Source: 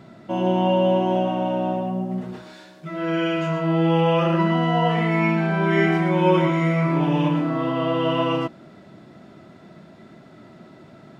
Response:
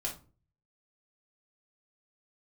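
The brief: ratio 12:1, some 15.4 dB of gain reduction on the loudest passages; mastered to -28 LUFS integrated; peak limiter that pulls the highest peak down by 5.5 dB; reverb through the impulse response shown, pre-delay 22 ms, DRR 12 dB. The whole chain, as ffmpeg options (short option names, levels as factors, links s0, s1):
-filter_complex "[0:a]acompressor=threshold=0.0355:ratio=12,alimiter=level_in=1.33:limit=0.0631:level=0:latency=1,volume=0.75,asplit=2[s0][s1];[1:a]atrim=start_sample=2205,adelay=22[s2];[s1][s2]afir=irnorm=-1:irlink=0,volume=0.2[s3];[s0][s3]amix=inputs=2:normalize=0,volume=2.24"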